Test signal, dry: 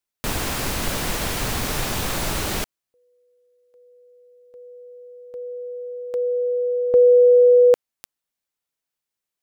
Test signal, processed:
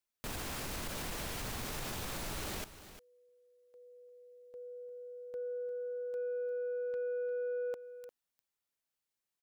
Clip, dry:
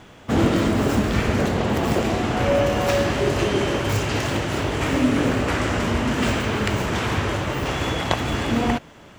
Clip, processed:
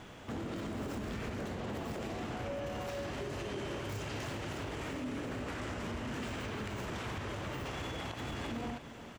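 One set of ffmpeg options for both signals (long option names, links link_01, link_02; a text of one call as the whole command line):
ffmpeg -i in.wav -filter_complex "[0:a]acompressor=threshold=-28dB:ratio=8:attack=0.28:release=149:knee=6:detection=peak,asoftclip=type=tanh:threshold=-26.5dB,asplit=2[link_01][link_02];[link_02]aecho=0:1:351:0.211[link_03];[link_01][link_03]amix=inputs=2:normalize=0,volume=-4.5dB" out.wav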